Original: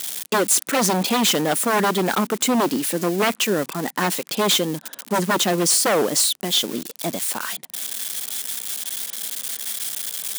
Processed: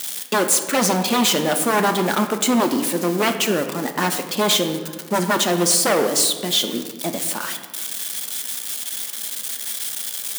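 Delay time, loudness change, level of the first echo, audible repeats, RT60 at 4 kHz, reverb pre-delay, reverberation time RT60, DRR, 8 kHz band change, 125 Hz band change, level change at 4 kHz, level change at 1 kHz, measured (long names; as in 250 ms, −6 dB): no echo audible, +1.0 dB, no echo audible, no echo audible, 0.90 s, 3 ms, 1.7 s, 5.5 dB, +0.5 dB, +0.5 dB, +1.0 dB, +1.0 dB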